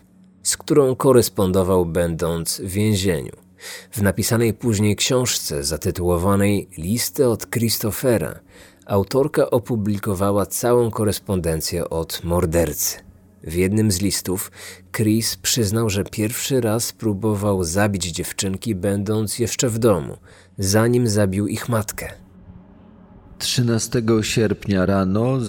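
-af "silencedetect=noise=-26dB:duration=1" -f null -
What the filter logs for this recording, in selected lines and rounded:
silence_start: 22.12
silence_end: 23.41 | silence_duration: 1.28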